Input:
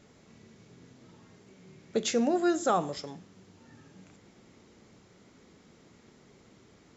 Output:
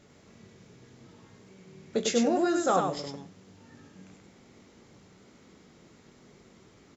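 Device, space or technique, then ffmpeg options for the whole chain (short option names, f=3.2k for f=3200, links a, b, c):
slapback doubling: -filter_complex "[0:a]asplit=3[a][b][c];[b]adelay=21,volume=-8.5dB[d];[c]adelay=100,volume=-4dB[e];[a][d][e]amix=inputs=3:normalize=0"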